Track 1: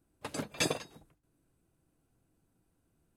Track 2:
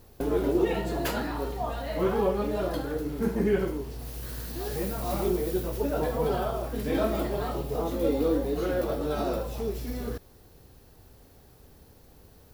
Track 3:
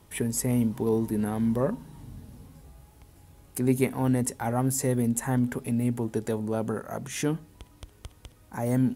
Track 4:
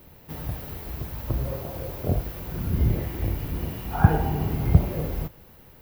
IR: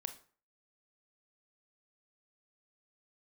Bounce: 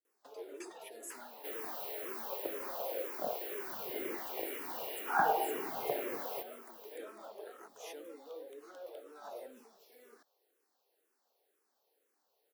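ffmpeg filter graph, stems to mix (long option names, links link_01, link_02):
-filter_complex "[0:a]volume=-18dB[link_01];[1:a]adelay=50,volume=-16.5dB[link_02];[2:a]alimiter=limit=-22dB:level=0:latency=1,adelay=700,volume=-12.5dB[link_03];[3:a]adelay=1150,volume=0.5dB[link_04];[link_01][link_02][link_03][link_04]amix=inputs=4:normalize=0,highpass=frequency=400:width=0.5412,highpass=frequency=400:width=1.3066,asplit=2[link_05][link_06];[link_06]afreqshift=-2[link_07];[link_05][link_07]amix=inputs=2:normalize=1"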